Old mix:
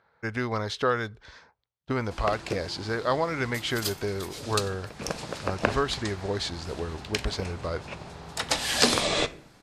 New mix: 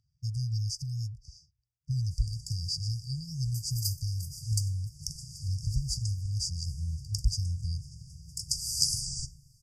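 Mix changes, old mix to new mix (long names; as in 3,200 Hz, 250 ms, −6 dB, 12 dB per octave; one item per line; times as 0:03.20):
speech +5.5 dB
master: add linear-phase brick-wall band-stop 160–4,600 Hz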